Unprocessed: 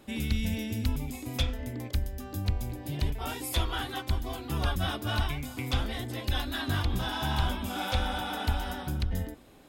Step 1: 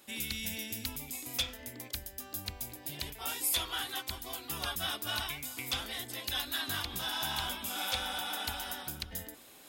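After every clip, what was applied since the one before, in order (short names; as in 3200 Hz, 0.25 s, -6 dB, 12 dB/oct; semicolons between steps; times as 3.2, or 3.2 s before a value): tilt +3.5 dB/oct; reverse; upward compressor, threshold -43 dBFS; reverse; gain -5 dB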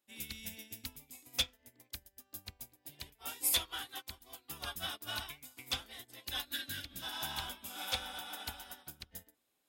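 spectral repair 6.52–7, 230–1400 Hz before; in parallel at -3 dB: soft clip -30.5 dBFS, distortion -13 dB; on the sum: upward expander 2.5:1, over -45 dBFS; gain -1 dB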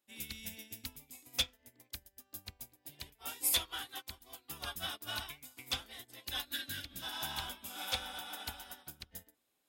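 nothing audible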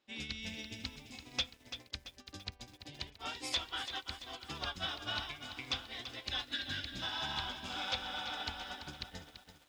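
LPF 5400 Hz 24 dB/oct; compressor 2:1, threshold -48 dBFS, peak gain reduction 11.5 dB; lo-fi delay 0.337 s, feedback 55%, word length 11-bit, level -10 dB; gain +8 dB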